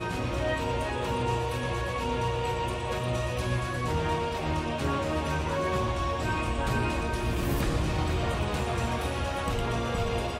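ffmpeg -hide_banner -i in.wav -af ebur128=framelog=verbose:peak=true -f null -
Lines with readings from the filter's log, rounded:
Integrated loudness:
  I:         -29.5 LUFS
  Threshold: -39.5 LUFS
Loudness range:
  LRA:         1.0 LU
  Threshold: -49.4 LUFS
  LRA low:   -29.9 LUFS
  LRA high:  -29.0 LUFS
True peak:
  Peak:      -16.8 dBFS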